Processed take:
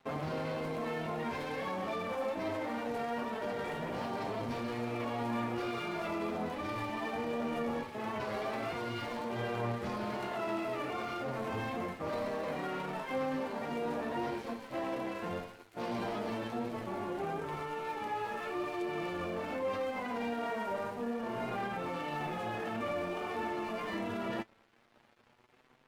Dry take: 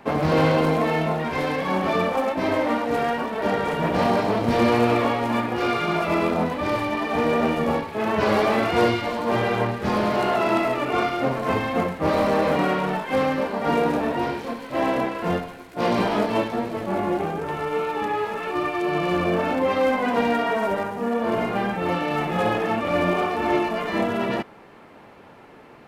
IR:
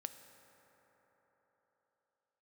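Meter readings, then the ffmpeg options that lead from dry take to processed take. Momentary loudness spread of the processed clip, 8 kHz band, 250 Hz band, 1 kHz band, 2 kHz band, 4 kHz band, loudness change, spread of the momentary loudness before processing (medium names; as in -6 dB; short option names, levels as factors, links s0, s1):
3 LU, -12.0 dB, -14.0 dB, -14.0 dB, -13.5 dB, -13.5 dB, -14.0 dB, 6 LU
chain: -af "alimiter=limit=0.106:level=0:latency=1:release=11,aeval=exprs='sgn(val(0))*max(abs(val(0))-0.00531,0)':c=same,flanger=delay=7.5:depth=2:regen=38:speed=0.23:shape=triangular,volume=0.562"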